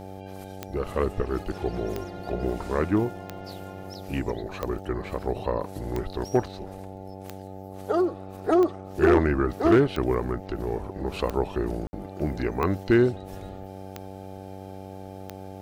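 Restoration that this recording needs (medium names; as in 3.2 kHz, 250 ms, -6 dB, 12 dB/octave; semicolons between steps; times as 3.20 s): clip repair -11.5 dBFS; de-click; de-hum 95.7 Hz, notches 9; room tone fill 11.87–11.93 s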